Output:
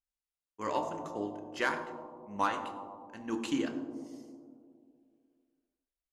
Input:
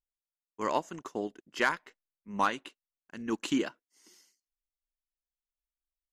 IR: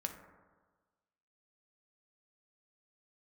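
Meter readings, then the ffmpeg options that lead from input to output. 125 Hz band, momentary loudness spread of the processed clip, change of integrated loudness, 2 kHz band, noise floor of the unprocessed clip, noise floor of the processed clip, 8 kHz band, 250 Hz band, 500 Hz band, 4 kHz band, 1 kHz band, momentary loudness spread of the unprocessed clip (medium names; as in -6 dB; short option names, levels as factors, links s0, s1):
-1.0 dB, 14 LU, -3.0 dB, -3.5 dB, under -85 dBFS, under -85 dBFS, -3.5 dB, -1.0 dB, -1.5 dB, -3.5 dB, -1.5 dB, 12 LU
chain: -filter_complex "[1:a]atrim=start_sample=2205,asetrate=23814,aresample=44100[s0];[0:a][s0]afir=irnorm=-1:irlink=0,volume=0.531"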